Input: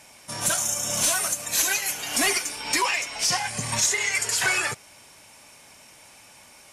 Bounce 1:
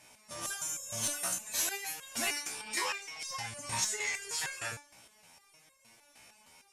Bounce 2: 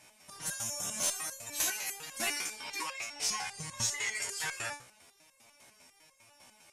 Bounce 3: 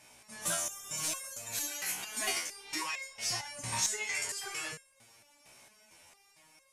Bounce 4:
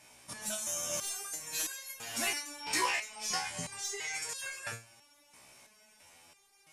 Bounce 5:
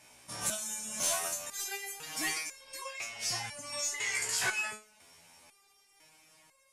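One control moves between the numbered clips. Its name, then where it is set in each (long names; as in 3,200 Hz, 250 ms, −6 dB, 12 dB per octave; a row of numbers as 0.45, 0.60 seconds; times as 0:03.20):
step-sequenced resonator, speed: 6.5, 10, 4.4, 3, 2 Hertz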